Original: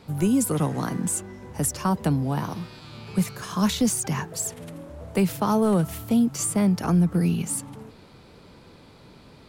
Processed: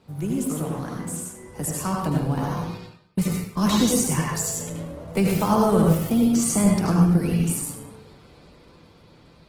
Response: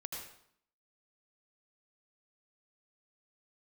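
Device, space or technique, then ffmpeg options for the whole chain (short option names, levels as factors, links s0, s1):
speakerphone in a meeting room: -filter_complex "[0:a]asplit=3[s0][s1][s2];[s0]afade=t=out:st=2.77:d=0.02[s3];[s1]agate=range=0.0178:threshold=0.0316:ratio=16:detection=peak,afade=t=in:st=2.77:d=0.02,afade=t=out:st=4.16:d=0.02[s4];[s2]afade=t=in:st=4.16:d=0.02[s5];[s3][s4][s5]amix=inputs=3:normalize=0[s6];[1:a]atrim=start_sample=2205[s7];[s6][s7]afir=irnorm=-1:irlink=0,dynaudnorm=f=520:g=9:m=2.24,volume=0.794" -ar 48000 -c:a libopus -b:a 16k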